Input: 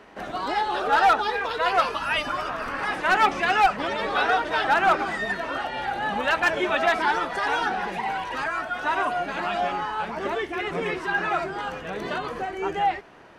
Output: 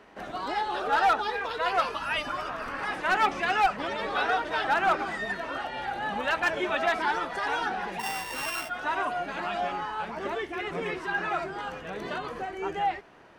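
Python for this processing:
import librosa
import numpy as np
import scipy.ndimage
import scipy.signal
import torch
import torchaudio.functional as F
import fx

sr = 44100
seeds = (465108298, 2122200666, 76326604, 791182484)

y = fx.sample_sort(x, sr, block=16, at=(7.99, 8.68), fade=0.02)
y = F.gain(torch.from_numpy(y), -4.5).numpy()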